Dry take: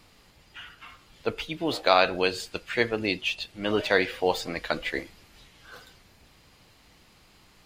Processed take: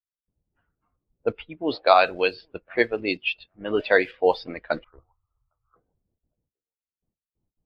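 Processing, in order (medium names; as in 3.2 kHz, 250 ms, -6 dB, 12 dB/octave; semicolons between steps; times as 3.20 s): gate with hold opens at -46 dBFS; steep low-pass 5.6 kHz 96 dB/octave; on a send: thinning echo 807 ms, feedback 26%, high-pass 300 Hz, level -24 dB; on the sum: harmonic-percussive split percussive +7 dB; 4.84–5.76 s: FFT filter 120 Hz 0 dB, 170 Hz -20 dB, 580 Hz -13 dB, 1.3 kHz +13 dB, 1.8 kHz -27 dB; in parallel at -9.5 dB: bit crusher 5-bit; on the sum: level-controlled noise filter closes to 580 Hz, open at -13 dBFS; spectral contrast expander 1.5:1; trim -4.5 dB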